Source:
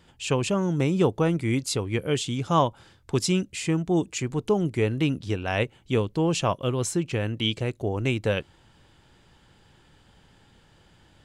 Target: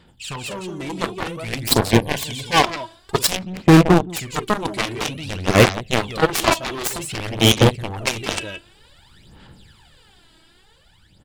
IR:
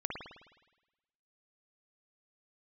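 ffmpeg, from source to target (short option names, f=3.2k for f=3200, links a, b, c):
-filter_complex "[0:a]aecho=1:1:43.73|172:0.282|0.398,asplit=2[a][b];[1:a]atrim=start_sample=2205,asetrate=66150,aresample=44100[c];[b][c]afir=irnorm=-1:irlink=0,volume=-20.5dB[d];[a][d]amix=inputs=2:normalize=0,dynaudnorm=f=290:g=9:m=7dB,highshelf=f=2.8k:g=8.5,aphaser=in_gain=1:out_gain=1:delay=3.1:decay=0.72:speed=0.53:type=sinusoidal,equalizer=f=200:t=o:w=0.33:g=3,equalizer=f=4k:t=o:w=0.33:g=4,equalizer=f=6.3k:t=o:w=0.33:g=-9,aeval=exprs='2*(cos(1*acos(clip(val(0)/2,-1,1)))-cos(1*PI/2))+0.355*(cos(7*acos(clip(val(0)/2,-1,1)))-cos(7*PI/2))':c=same,volume=9.5dB,asoftclip=hard,volume=-9.5dB,asettb=1/sr,asplit=3[e][f][g];[e]atrim=end=1.914[h];[f]atrim=start=1.91:end=2.63,asetpts=PTS-STARTPTS,afade=t=in:d=0.004:c=qsin,afade=t=out:st=0.716:d=0.004:c=qsin,asuperstop=centerf=1300:order=8:qfactor=4.5[i];[g]atrim=start=2.626[j];[h][i]acrossfade=d=0.004:c1=hsin:c2=qsin[k];[k][j]acrossfade=d=0.004:c1=qsin:c2=hsin,asettb=1/sr,asplit=3[l][m][n];[l]atrim=end=3.354[o];[m]atrim=start=3.35:end=4.1,asetpts=PTS-STARTPTS,afade=t=in:d=0.004:c=qsin,afade=t=out:st=0.746:d=0.004:c=qsin,adynamicsmooth=sensitivity=3:basefreq=920[p];[n]atrim=start=4.096[q];[o][p]acrossfade=d=0.004:c1=hsin:c2=qsin[r];[r][q]acrossfade=d=0.004:c1=qsin:c2=hsin,volume=5.5dB"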